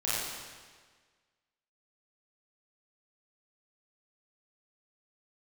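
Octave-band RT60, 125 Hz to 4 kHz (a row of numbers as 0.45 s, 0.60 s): 1.5 s, 1.5 s, 1.6 s, 1.5 s, 1.5 s, 1.4 s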